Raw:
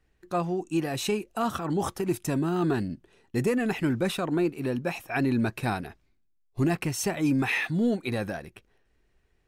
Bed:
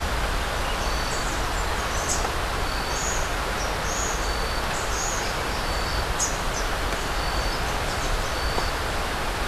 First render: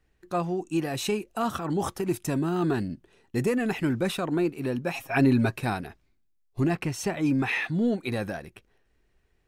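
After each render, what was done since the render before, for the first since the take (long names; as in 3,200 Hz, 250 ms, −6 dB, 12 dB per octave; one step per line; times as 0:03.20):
0:04.93–0:05.56: comb filter 7.4 ms, depth 94%
0:06.60–0:07.98: high-shelf EQ 7,200 Hz −9.5 dB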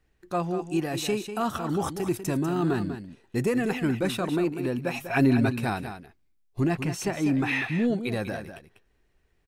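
single-tap delay 195 ms −10 dB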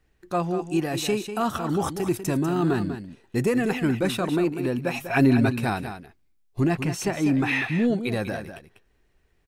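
level +2.5 dB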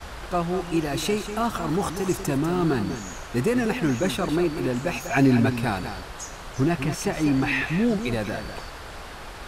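mix in bed −12 dB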